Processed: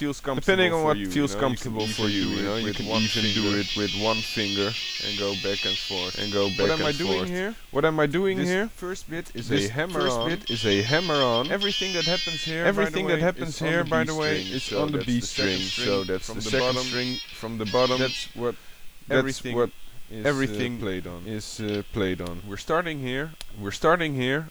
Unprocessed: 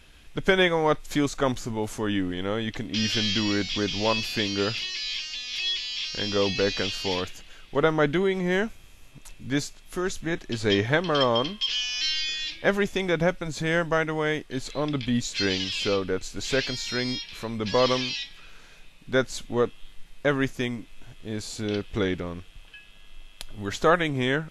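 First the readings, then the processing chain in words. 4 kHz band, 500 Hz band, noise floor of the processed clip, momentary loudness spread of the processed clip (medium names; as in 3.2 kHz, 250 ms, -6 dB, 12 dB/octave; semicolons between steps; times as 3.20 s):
+1.5 dB, +1.5 dB, -41 dBFS, 9 LU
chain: reverse echo 1144 ms -4 dB; added noise white -57 dBFS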